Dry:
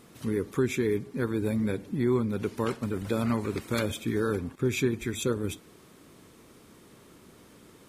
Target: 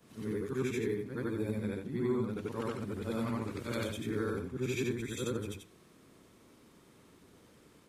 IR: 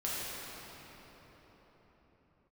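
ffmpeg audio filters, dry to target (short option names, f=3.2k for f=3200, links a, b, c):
-af "afftfilt=real='re':imag='-im':win_size=8192:overlap=0.75,highshelf=f=11k:g=-5,volume=-2dB"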